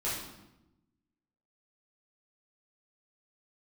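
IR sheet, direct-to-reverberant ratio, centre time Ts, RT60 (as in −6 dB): −9.5 dB, 59 ms, 0.95 s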